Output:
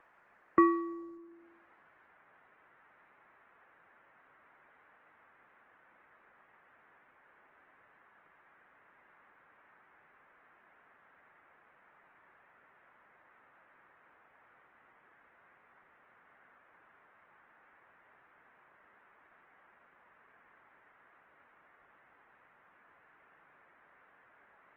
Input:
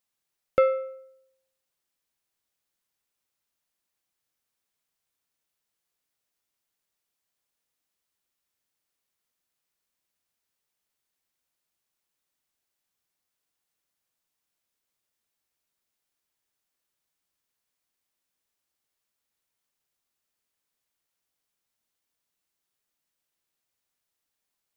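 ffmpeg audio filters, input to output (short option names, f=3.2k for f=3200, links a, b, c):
-af "tiltshelf=f=660:g=-9,bandreject=f=50:t=h:w=6,bandreject=f=100:t=h:w=6,bandreject=f=150:t=h:w=6,bandreject=f=200:t=h:w=6,bandreject=f=250:t=h:w=6,bandreject=f=300:t=h:w=6,acompressor=mode=upward:threshold=-23dB:ratio=2.5,highpass=f=250:t=q:w=0.5412,highpass=f=250:t=q:w=1.307,lowpass=f=2k:t=q:w=0.5176,lowpass=f=2k:t=q:w=0.7071,lowpass=f=2k:t=q:w=1.932,afreqshift=-190,volume=-3dB" -ar 48000 -c:a libopus -b:a 16k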